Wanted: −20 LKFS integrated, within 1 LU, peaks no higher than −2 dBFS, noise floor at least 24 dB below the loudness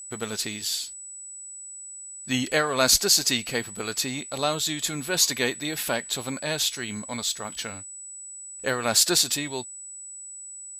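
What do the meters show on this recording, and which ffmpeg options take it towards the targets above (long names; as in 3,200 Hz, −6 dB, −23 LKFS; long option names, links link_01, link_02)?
interfering tone 7,900 Hz; level of the tone −38 dBFS; integrated loudness −24.5 LKFS; sample peak −5.5 dBFS; target loudness −20.0 LKFS
→ -af "bandreject=frequency=7900:width=30"
-af "volume=4.5dB,alimiter=limit=-2dB:level=0:latency=1"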